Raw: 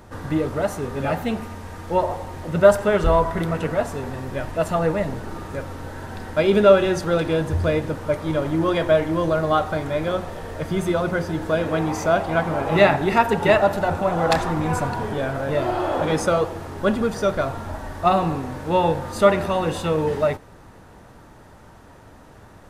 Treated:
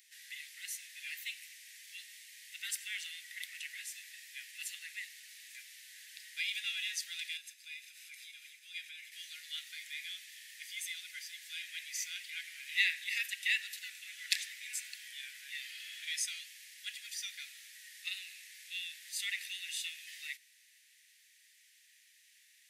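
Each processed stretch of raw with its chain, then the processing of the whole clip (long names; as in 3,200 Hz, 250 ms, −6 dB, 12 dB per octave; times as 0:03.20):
0:07.37–0:09.12: comb filter 0.8 ms, depth 41% + downward compressor 4 to 1, threshold −26 dBFS
whole clip: Butterworth high-pass 1,900 Hz 72 dB per octave; spectral tilt +1.5 dB per octave; level −6.5 dB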